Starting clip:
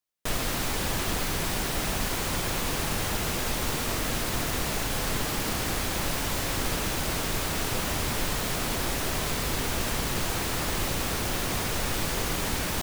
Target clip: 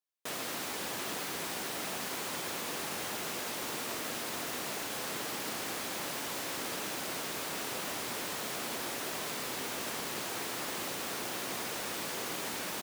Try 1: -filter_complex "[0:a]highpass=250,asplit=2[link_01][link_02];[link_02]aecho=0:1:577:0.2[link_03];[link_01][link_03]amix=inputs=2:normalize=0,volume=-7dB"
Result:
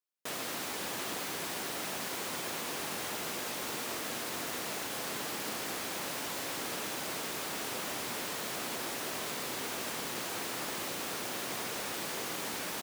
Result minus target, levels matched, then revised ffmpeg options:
echo 227 ms early
-filter_complex "[0:a]highpass=250,asplit=2[link_01][link_02];[link_02]aecho=0:1:804:0.2[link_03];[link_01][link_03]amix=inputs=2:normalize=0,volume=-7dB"

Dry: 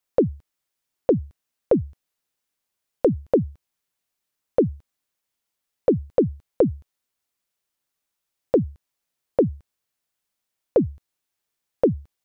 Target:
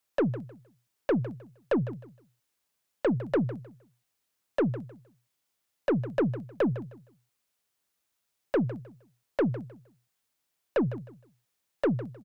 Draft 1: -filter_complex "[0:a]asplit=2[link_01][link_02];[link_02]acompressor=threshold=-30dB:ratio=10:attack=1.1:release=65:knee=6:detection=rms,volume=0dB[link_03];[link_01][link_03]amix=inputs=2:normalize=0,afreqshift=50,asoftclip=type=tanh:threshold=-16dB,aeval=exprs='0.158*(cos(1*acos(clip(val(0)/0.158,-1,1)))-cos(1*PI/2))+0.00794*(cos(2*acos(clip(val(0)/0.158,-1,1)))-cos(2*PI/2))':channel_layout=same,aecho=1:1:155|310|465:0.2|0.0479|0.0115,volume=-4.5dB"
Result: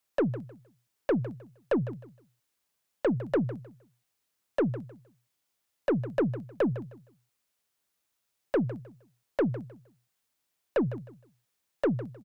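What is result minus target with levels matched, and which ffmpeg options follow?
downward compressor: peak gain reduction +6 dB
-filter_complex "[0:a]asplit=2[link_01][link_02];[link_02]acompressor=threshold=-23.5dB:ratio=10:attack=1.1:release=65:knee=6:detection=rms,volume=0dB[link_03];[link_01][link_03]amix=inputs=2:normalize=0,afreqshift=50,asoftclip=type=tanh:threshold=-16dB,aeval=exprs='0.158*(cos(1*acos(clip(val(0)/0.158,-1,1)))-cos(1*PI/2))+0.00794*(cos(2*acos(clip(val(0)/0.158,-1,1)))-cos(2*PI/2))':channel_layout=same,aecho=1:1:155|310|465:0.2|0.0479|0.0115,volume=-4.5dB"

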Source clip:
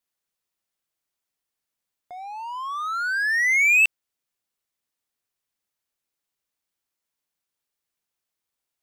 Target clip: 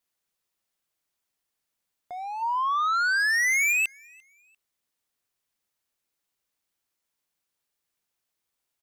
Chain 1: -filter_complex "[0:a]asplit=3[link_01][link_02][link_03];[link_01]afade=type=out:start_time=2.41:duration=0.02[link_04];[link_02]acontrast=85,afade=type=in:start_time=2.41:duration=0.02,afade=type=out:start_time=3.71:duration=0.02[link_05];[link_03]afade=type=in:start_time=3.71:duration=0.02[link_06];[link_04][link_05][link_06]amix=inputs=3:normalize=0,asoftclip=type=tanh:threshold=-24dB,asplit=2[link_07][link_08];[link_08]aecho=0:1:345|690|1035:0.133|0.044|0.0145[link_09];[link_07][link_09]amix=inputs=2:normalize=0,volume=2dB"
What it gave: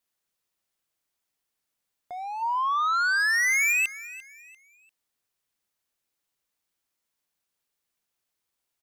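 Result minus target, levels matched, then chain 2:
echo-to-direct +11 dB
-filter_complex "[0:a]asplit=3[link_01][link_02][link_03];[link_01]afade=type=out:start_time=2.41:duration=0.02[link_04];[link_02]acontrast=85,afade=type=in:start_time=2.41:duration=0.02,afade=type=out:start_time=3.71:duration=0.02[link_05];[link_03]afade=type=in:start_time=3.71:duration=0.02[link_06];[link_04][link_05][link_06]amix=inputs=3:normalize=0,asoftclip=type=tanh:threshold=-24dB,asplit=2[link_07][link_08];[link_08]aecho=0:1:345|690:0.0376|0.0124[link_09];[link_07][link_09]amix=inputs=2:normalize=0,volume=2dB"

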